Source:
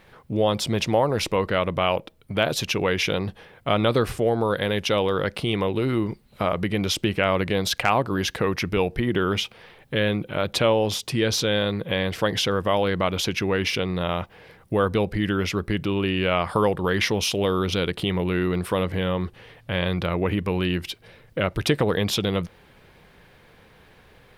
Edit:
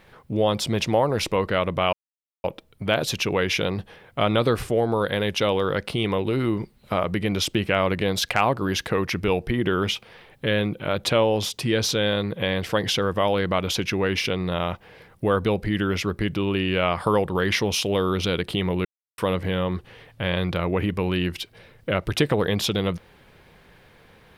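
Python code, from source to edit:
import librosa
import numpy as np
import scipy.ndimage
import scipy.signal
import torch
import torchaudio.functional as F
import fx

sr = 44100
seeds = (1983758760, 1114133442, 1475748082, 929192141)

y = fx.edit(x, sr, fx.insert_silence(at_s=1.93, length_s=0.51),
    fx.silence(start_s=18.34, length_s=0.33), tone=tone)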